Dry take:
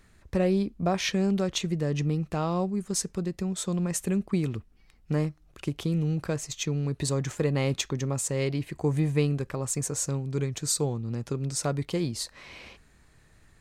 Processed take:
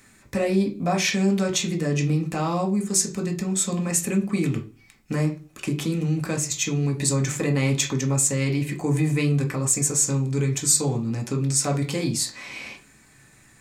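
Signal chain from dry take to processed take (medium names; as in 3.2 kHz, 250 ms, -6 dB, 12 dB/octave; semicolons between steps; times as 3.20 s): treble shelf 6.5 kHz +6.5 dB; reverberation RT60 0.35 s, pre-delay 3 ms, DRR 1 dB; in parallel at 0 dB: peak limiter -24 dBFS, peak gain reduction 16.5 dB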